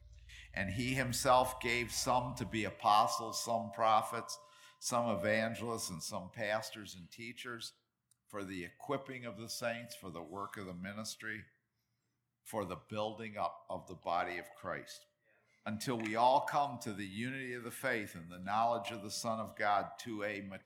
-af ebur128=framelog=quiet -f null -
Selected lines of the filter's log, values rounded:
Integrated loudness:
  I:         -37.1 LUFS
  Threshold: -47.5 LUFS
Loudness range:
  LRA:        10.4 LU
  Threshold: -58.0 LUFS
  LRA low:   -44.1 LUFS
  LRA high:  -33.8 LUFS